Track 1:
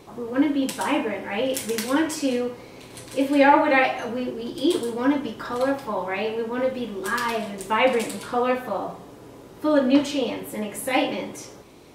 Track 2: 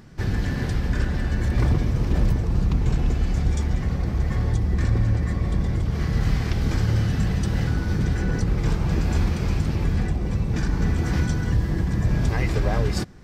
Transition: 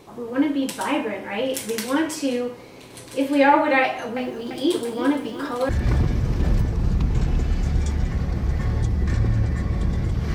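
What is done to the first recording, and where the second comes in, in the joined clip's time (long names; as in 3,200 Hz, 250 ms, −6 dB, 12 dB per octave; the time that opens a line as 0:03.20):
track 1
0:03.82–0:05.69: feedback echo at a low word length 343 ms, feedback 55%, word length 8 bits, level −11 dB
0:05.69: continue with track 2 from 0:01.40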